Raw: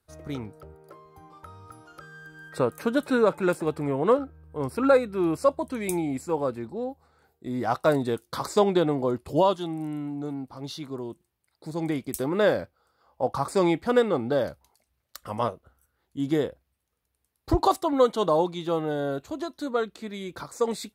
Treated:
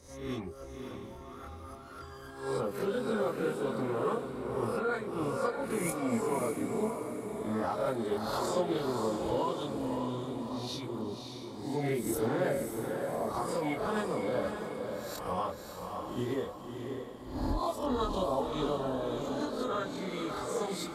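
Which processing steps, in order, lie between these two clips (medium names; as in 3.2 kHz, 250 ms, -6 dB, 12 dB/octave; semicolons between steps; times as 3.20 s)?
reverse spectral sustain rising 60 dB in 0.60 s; formant-preserving pitch shift -2.5 st; compression 4:1, threshold -28 dBFS, peak gain reduction 13 dB; chorus voices 6, 0.68 Hz, delay 25 ms, depth 2.8 ms; echo that smears into a reverb 577 ms, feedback 46%, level -5 dB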